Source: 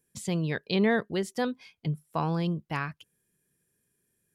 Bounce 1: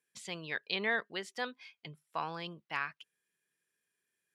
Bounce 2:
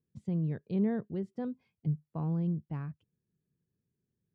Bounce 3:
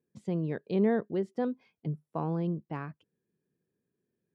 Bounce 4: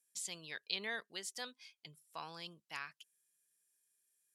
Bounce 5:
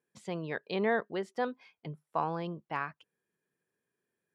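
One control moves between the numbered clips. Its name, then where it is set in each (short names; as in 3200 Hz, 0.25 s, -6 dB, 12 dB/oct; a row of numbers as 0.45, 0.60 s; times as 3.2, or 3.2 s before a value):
band-pass, frequency: 2300, 110, 320, 7000, 880 Hz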